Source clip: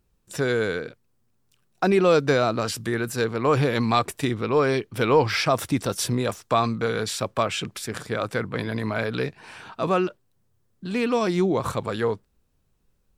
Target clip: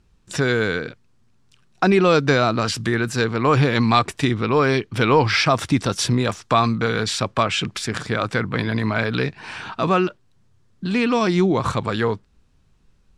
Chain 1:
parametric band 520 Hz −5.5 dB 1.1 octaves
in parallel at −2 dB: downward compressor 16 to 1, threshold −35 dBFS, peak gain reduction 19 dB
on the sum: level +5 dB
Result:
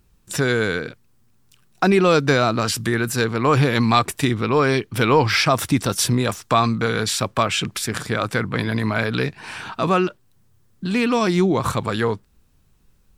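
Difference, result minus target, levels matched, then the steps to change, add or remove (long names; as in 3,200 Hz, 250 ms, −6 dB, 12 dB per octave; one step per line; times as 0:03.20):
8,000 Hz band +4.0 dB
add first: low-pass filter 6,400 Hz 12 dB per octave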